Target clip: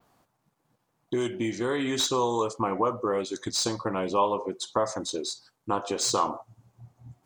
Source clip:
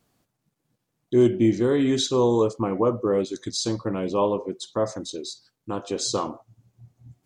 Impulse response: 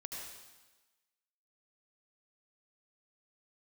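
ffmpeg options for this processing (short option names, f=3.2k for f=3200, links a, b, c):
-filter_complex "[0:a]adynamicequalizer=threshold=0.00501:dfrequency=8700:dqfactor=0.98:tfrequency=8700:tqfactor=0.98:attack=5:release=100:ratio=0.375:range=2.5:mode=boostabove:tftype=bell,acrossover=split=1600[a][b];[a]acompressor=threshold=-29dB:ratio=6[c];[b]asoftclip=type=tanh:threshold=-20.5dB[d];[c][d]amix=inputs=2:normalize=0,equalizer=f=950:w=0.88:g=11"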